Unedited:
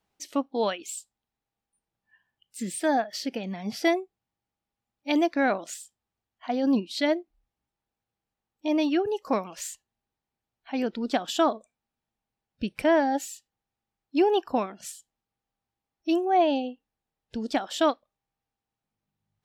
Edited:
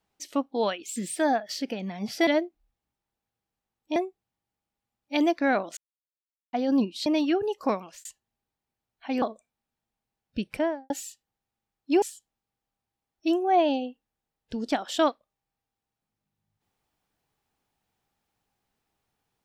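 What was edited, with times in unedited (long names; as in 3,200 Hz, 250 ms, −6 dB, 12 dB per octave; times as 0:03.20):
0:00.96–0:02.60: remove
0:05.72–0:06.48: silence
0:07.01–0:08.70: move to 0:03.91
0:09.31–0:09.69: fade out equal-power
0:10.86–0:11.47: remove
0:12.70–0:13.15: fade out and dull
0:14.27–0:14.84: remove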